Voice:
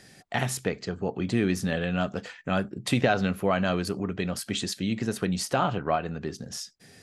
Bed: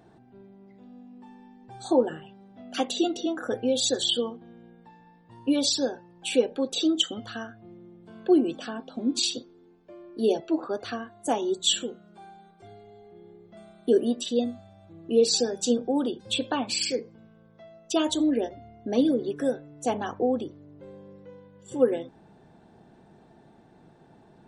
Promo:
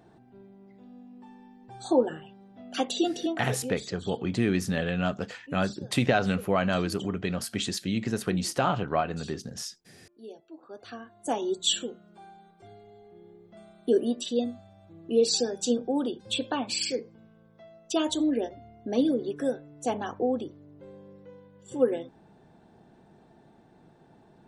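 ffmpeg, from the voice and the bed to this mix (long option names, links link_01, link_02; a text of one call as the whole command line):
ffmpeg -i stem1.wav -i stem2.wav -filter_complex "[0:a]adelay=3050,volume=-0.5dB[link_01];[1:a]volume=18dB,afade=type=out:start_time=3.27:duration=0.58:silence=0.1,afade=type=in:start_time=10.6:duration=0.82:silence=0.112202[link_02];[link_01][link_02]amix=inputs=2:normalize=0" out.wav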